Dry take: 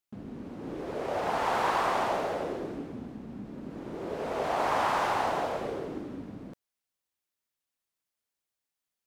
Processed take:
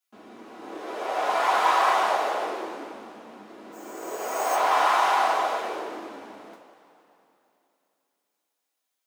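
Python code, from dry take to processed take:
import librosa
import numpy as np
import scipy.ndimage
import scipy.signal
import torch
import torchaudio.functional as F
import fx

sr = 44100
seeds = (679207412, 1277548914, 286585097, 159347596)

y = fx.resample_bad(x, sr, factor=6, down='filtered', up='hold', at=(3.72, 4.55))
y = scipy.signal.sosfilt(scipy.signal.butter(2, 580.0, 'highpass', fs=sr, output='sos'), y)
y = fx.rev_double_slope(y, sr, seeds[0], early_s=0.24, late_s=3.1, knee_db=-20, drr_db=-6.0)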